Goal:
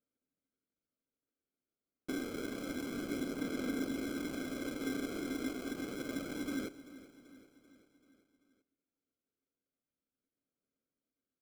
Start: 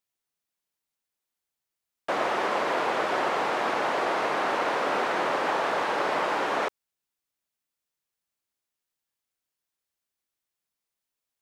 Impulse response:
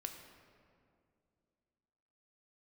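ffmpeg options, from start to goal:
-filter_complex "[0:a]lowpass=4200,aemphasis=mode=reproduction:type=bsi,aecho=1:1:0.9:0.75,acompressor=threshold=-29dB:ratio=6,asplit=3[link_01][link_02][link_03];[link_01]bandpass=frequency=270:width_type=q:width=8,volume=0dB[link_04];[link_02]bandpass=frequency=2290:width_type=q:width=8,volume=-6dB[link_05];[link_03]bandpass=frequency=3010:width_type=q:width=8,volume=-9dB[link_06];[link_04][link_05][link_06]amix=inputs=3:normalize=0,acrusher=samples=24:mix=1:aa=0.000001,aphaser=in_gain=1:out_gain=1:delay=2.9:decay=0.21:speed=0.28:type=sinusoidal,aecho=1:1:387|774|1161|1548|1935:0.141|0.0805|0.0459|0.0262|0.0149,asplit=2[link_07][link_08];[1:a]atrim=start_sample=2205[link_09];[link_08][link_09]afir=irnorm=-1:irlink=0,volume=-10dB[link_10];[link_07][link_10]amix=inputs=2:normalize=0,volume=6dB"

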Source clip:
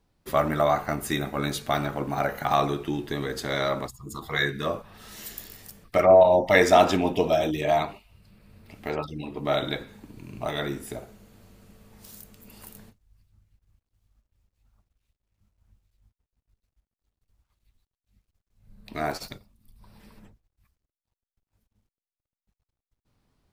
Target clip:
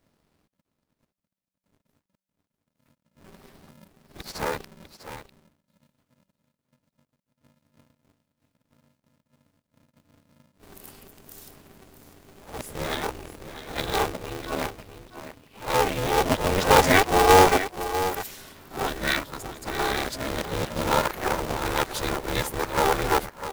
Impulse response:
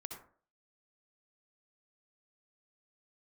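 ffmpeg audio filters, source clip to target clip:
-af "areverse,acrusher=bits=3:mode=log:mix=0:aa=0.000001,aecho=1:1:649:0.266,aeval=exprs='val(0)*sgn(sin(2*PI*190*n/s))':channel_layout=same"

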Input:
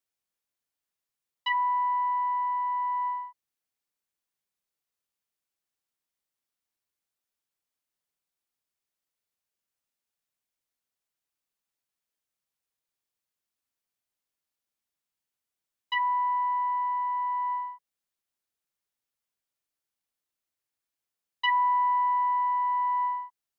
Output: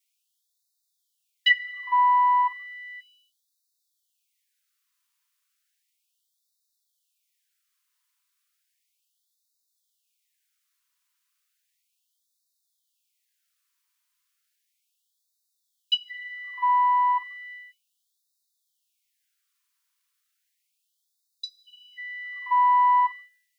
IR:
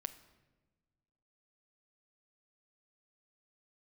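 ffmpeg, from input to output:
-filter_complex "[0:a]asplit=2[link_01][link_02];[link_02]adynamicequalizer=threshold=0.0112:dfrequency=910:dqfactor=1.3:tfrequency=910:tqfactor=1.3:attack=5:release=100:ratio=0.375:range=2.5:mode=cutabove:tftype=bell[link_03];[1:a]atrim=start_sample=2205[link_04];[link_03][link_04]afir=irnorm=-1:irlink=0,volume=8dB[link_05];[link_01][link_05]amix=inputs=2:normalize=0,afftfilt=real='re*gte(b*sr/1024,880*pow(3600/880,0.5+0.5*sin(2*PI*0.34*pts/sr)))':imag='im*gte(b*sr/1024,880*pow(3600/880,0.5+0.5*sin(2*PI*0.34*pts/sr)))':win_size=1024:overlap=0.75,volume=2.5dB"

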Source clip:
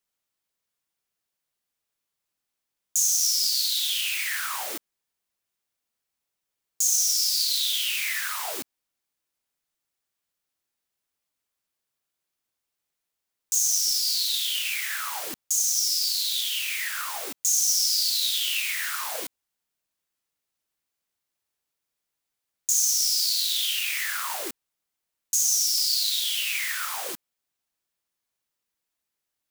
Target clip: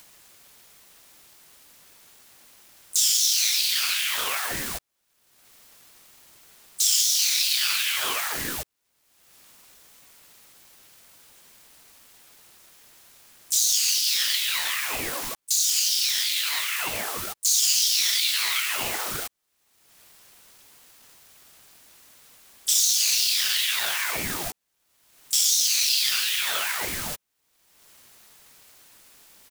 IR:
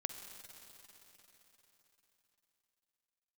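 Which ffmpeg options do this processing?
-filter_complex "[0:a]acompressor=mode=upward:threshold=-31dB:ratio=2.5,asplit=4[link_01][link_02][link_03][link_04];[link_02]asetrate=29433,aresample=44100,atempo=1.49831,volume=-6dB[link_05];[link_03]asetrate=55563,aresample=44100,atempo=0.793701,volume=-16dB[link_06];[link_04]asetrate=58866,aresample=44100,atempo=0.749154,volume=-18dB[link_07];[link_01][link_05][link_06][link_07]amix=inputs=4:normalize=0,aeval=exprs='val(0)*sin(2*PI*630*n/s+630*0.65/2.6*sin(2*PI*2.6*n/s))':channel_layout=same,volume=3.5dB"

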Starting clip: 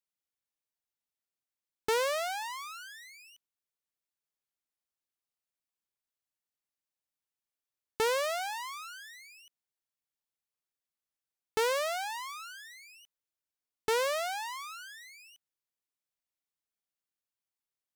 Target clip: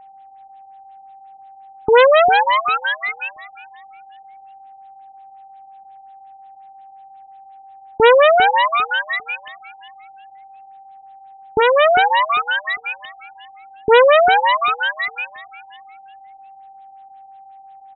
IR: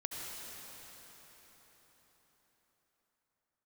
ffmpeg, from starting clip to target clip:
-filter_complex "[0:a]acompressor=threshold=-49dB:ratio=2,asplit=3[link_01][link_02][link_03];[link_01]afade=type=out:start_time=11.59:duration=0.02[link_04];[link_02]highpass=480,lowpass=5600,afade=type=in:start_time=11.59:duration=0.02,afade=type=out:start_time=12.46:duration=0.02[link_05];[link_03]afade=type=in:start_time=12.46:duration=0.02[link_06];[link_04][link_05][link_06]amix=inputs=3:normalize=0,aeval=exprs='val(0)+0.000224*sin(2*PI*780*n/s)':channel_layout=same,asplit=2[link_07][link_08];[link_08]aecho=0:1:400|800|1200:0.141|0.0396|0.0111[link_09];[link_07][link_09]amix=inputs=2:normalize=0,alimiter=level_in=32.5dB:limit=-1dB:release=50:level=0:latency=1,afftfilt=real='re*lt(b*sr/1024,770*pow(4100/770,0.5+0.5*sin(2*PI*5.6*pts/sr)))':imag='im*lt(b*sr/1024,770*pow(4100/770,0.5+0.5*sin(2*PI*5.6*pts/sr)))':win_size=1024:overlap=0.75"

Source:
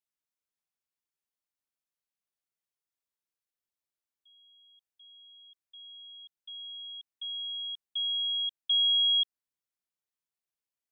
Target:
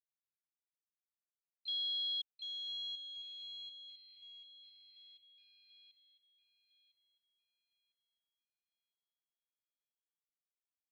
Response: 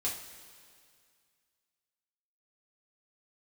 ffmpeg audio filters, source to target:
-filter_complex "[0:a]areverse,asplit=2[link_01][link_02];[link_02]asetrate=55563,aresample=44100,atempo=0.793701,volume=-9dB[link_03];[link_01][link_03]amix=inputs=2:normalize=0,acrusher=bits=8:mix=0:aa=0.000001,highshelf=frequency=3100:gain=-12,asplit=2[link_04][link_05];[link_05]adelay=1004,lowpass=frequency=3100:poles=1,volume=-7.5dB,asplit=2[link_06][link_07];[link_07]adelay=1004,lowpass=frequency=3100:poles=1,volume=0.46,asplit=2[link_08][link_09];[link_09]adelay=1004,lowpass=frequency=3100:poles=1,volume=0.46,asplit=2[link_10][link_11];[link_11]adelay=1004,lowpass=frequency=3100:poles=1,volume=0.46,asplit=2[link_12][link_13];[link_13]adelay=1004,lowpass=frequency=3100:poles=1,volume=0.46[link_14];[link_06][link_08][link_10][link_12][link_14]amix=inputs=5:normalize=0[link_15];[link_04][link_15]amix=inputs=2:normalize=0,aeval=exprs='0.0562*(cos(1*acos(clip(val(0)/0.0562,-1,1)))-cos(1*PI/2))+0.00562*(cos(4*acos(clip(val(0)/0.0562,-1,1)))-cos(4*PI/2))+0.01*(cos(8*acos(clip(val(0)/0.0562,-1,1)))-cos(8*PI/2))':channel_layout=same,asuperpass=centerf=3200:order=8:qfactor=1.4,bandreject=frequency=3100:width=11,volume=-5dB"

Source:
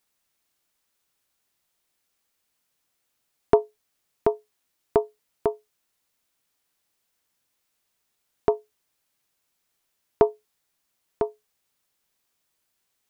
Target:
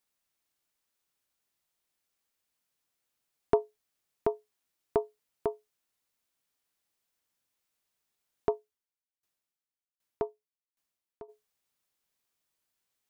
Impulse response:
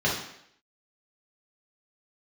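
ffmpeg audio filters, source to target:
-filter_complex "[0:a]asplit=3[link_01][link_02][link_03];[link_01]afade=type=out:start_time=8.5:duration=0.02[link_04];[link_02]aeval=exprs='val(0)*pow(10,-26*if(lt(mod(1.3*n/s,1),2*abs(1.3)/1000),1-mod(1.3*n/s,1)/(2*abs(1.3)/1000),(mod(1.3*n/s,1)-2*abs(1.3)/1000)/(1-2*abs(1.3)/1000))/20)':channel_layout=same,afade=type=in:start_time=8.5:duration=0.02,afade=type=out:start_time=11.28:duration=0.02[link_05];[link_03]afade=type=in:start_time=11.28:duration=0.02[link_06];[link_04][link_05][link_06]amix=inputs=3:normalize=0,volume=-7dB"

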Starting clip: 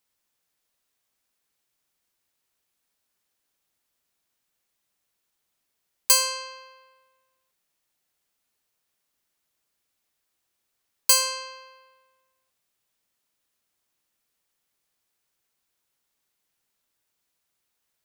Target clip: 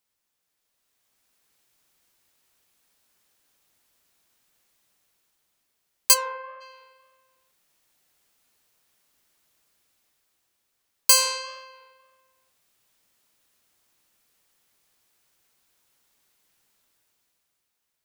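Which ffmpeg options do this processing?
ffmpeg -i in.wav -filter_complex "[0:a]dynaudnorm=framelen=190:gausssize=11:maxgain=10.5dB,asplit=3[link_01][link_02][link_03];[link_01]afade=type=out:start_time=6.13:duration=0.02[link_04];[link_02]lowpass=frequency=1800:width=0.5412,lowpass=frequency=1800:width=1.3066,afade=type=in:start_time=6.13:duration=0.02,afade=type=out:start_time=6.6:duration=0.02[link_05];[link_03]afade=type=in:start_time=6.6:duration=0.02[link_06];[link_04][link_05][link_06]amix=inputs=3:normalize=0,flanger=delay=8.7:depth=4.3:regen=-78:speed=1.8:shape=sinusoidal,volume=3dB" out.wav

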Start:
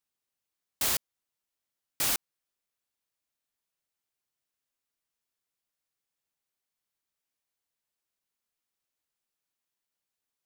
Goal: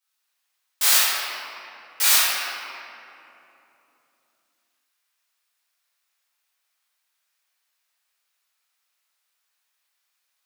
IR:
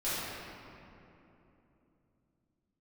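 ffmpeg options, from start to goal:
-filter_complex "[0:a]highpass=1100[link_01];[1:a]atrim=start_sample=2205[link_02];[link_01][link_02]afir=irnorm=-1:irlink=0,volume=8dB"

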